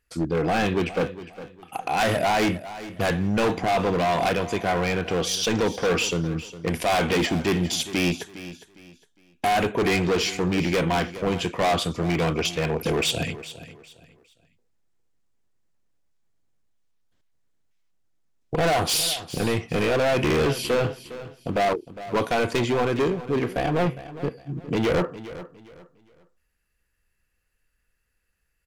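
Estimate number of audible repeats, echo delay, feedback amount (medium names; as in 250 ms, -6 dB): 2, 408 ms, 29%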